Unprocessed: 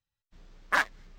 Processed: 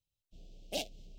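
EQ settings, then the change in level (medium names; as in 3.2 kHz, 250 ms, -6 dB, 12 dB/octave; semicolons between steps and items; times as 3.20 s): elliptic band-stop 670–2800 Hz, stop band 40 dB; 0.0 dB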